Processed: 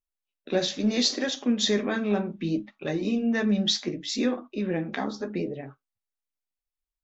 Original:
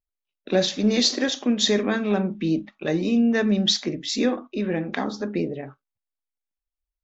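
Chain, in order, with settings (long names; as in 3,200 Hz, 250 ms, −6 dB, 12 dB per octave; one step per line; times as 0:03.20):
flanger 0.7 Hz, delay 7.1 ms, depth 7.3 ms, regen −34%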